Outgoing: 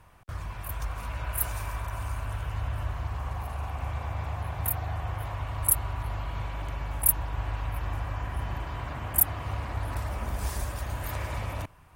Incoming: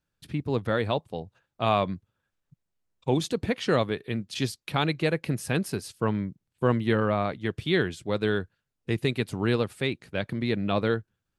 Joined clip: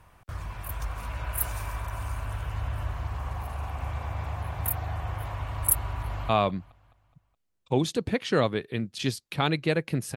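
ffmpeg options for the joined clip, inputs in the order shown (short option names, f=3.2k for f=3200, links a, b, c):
-filter_complex "[0:a]apad=whole_dur=10.16,atrim=end=10.16,atrim=end=6.292[a];[1:a]atrim=start=1.648:end=5.52[b];[a][b]acrossfade=d=0.004:c1=hsin:c2=hsin,asplit=2[c][d];[d]afade=t=in:st=5.9:d=0.01,afade=t=out:st=6.29:d=0.01,aecho=0:1:210|420|630|840|1050:0.177828|0.088914|0.044457|0.0222285|0.0111142[e];[c][e]amix=inputs=2:normalize=0"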